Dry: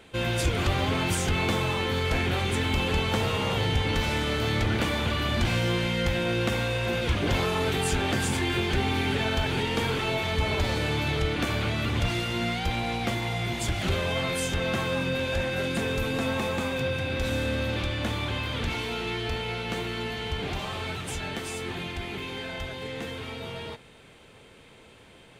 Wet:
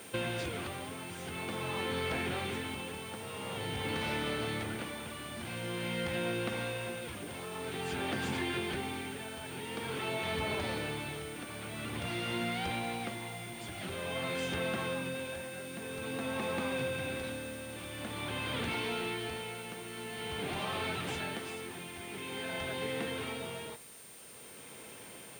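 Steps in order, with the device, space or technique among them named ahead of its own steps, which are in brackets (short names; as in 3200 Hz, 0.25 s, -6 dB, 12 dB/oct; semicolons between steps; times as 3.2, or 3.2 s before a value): medium wave at night (BPF 140–4100 Hz; compressor 5:1, threshold -34 dBFS, peak gain reduction 10.5 dB; tremolo 0.48 Hz, depth 65%; whine 9000 Hz -55 dBFS; white noise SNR 18 dB); gain +2 dB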